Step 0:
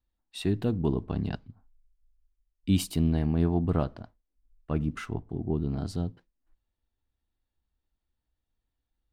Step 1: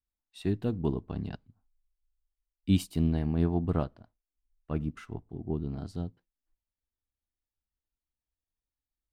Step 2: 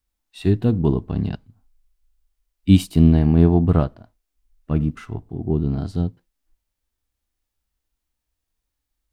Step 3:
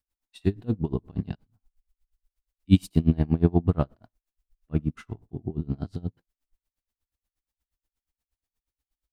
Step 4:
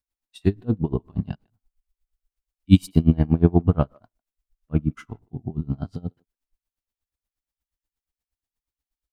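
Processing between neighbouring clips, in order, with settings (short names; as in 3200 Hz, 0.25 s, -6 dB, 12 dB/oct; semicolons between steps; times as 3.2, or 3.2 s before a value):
upward expander 1.5:1, over -44 dBFS
harmonic-percussive split harmonic +8 dB; gain +6.5 dB
dB-linear tremolo 8.4 Hz, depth 27 dB; gain -2 dB
speakerphone echo 0.15 s, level -26 dB; spectral noise reduction 7 dB; gain +4 dB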